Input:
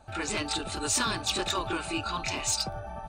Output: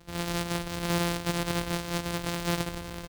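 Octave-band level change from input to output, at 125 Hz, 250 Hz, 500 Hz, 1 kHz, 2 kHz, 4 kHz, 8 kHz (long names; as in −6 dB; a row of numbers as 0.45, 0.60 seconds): +7.0, +4.5, +2.5, −2.5, −1.0, −4.5, −7.5 decibels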